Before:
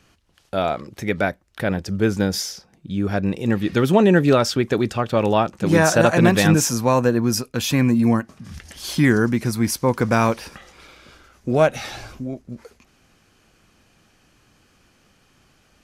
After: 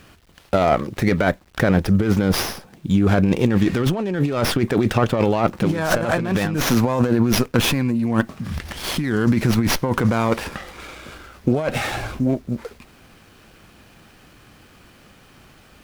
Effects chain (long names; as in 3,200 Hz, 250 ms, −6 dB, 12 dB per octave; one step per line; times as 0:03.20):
bit reduction 11 bits
compressor whose output falls as the input rises −23 dBFS, ratio −1
dynamic equaliser 4,400 Hz, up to −6 dB, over −41 dBFS, Q 1.8
windowed peak hold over 5 samples
level +5 dB